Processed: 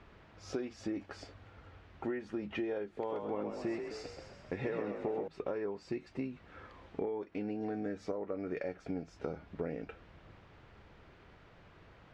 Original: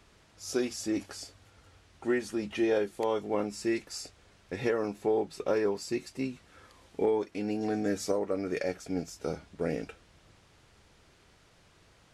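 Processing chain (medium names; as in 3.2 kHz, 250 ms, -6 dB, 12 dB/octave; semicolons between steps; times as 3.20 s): low-pass 2.3 kHz 12 dB/octave; compression 6:1, threshold -39 dBFS, peak gain reduction 15 dB; 2.84–5.28 s: frequency-shifting echo 130 ms, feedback 56%, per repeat +45 Hz, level -5.5 dB; trim +4 dB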